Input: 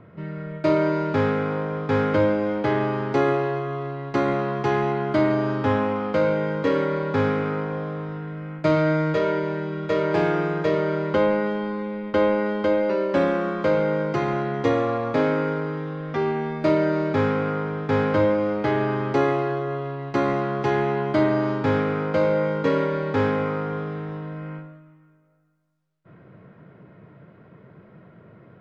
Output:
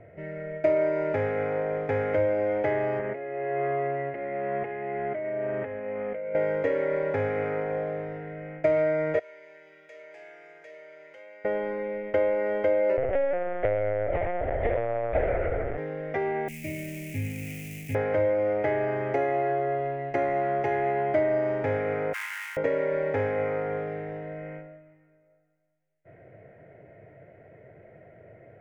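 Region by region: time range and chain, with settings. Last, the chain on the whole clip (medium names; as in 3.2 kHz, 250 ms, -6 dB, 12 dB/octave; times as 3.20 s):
2.99–6.35 s: cabinet simulation 170–2700 Hz, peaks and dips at 210 Hz +5 dB, 310 Hz -7 dB, 780 Hz -8 dB, 1.4 kHz -3 dB + compressor with a negative ratio -31 dBFS
9.19–11.45 s: differentiator + compression 3:1, threshold -47 dBFS + doubling 45 ms -12 dB
12.97–15.78 s: high-pass 150 Hz 6 dB/octave + LPC vocoder at 8 kHz pitch kept
16.48–17.95 s: zero-crossing glitches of -15 dBFS + FFT filter 250 Hz 0 dB, 420 Hz -23 dB, 1.4 kHz -28 dB, 2.5 kHz 0 dB, 3.5 kHz -9 dB
22.13–22.57 s: dead-time distortion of 0.18 ms + steep high-pass 990 Hz 72 dB/octave
whole clip: dynamic bell 1.1 kHz, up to +6 dB, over -39 dBFS, Q 1.9; compression, threshold -22 dBFS; FFT filter 100 Hz 0 dB, 190 Hz -13 dB, 680 Hz +7 dB, 1.1 kHz -18 dB, 2 kHz +5 dB, 4.1 kHz -18 dB, 6.3 kHz -8 dB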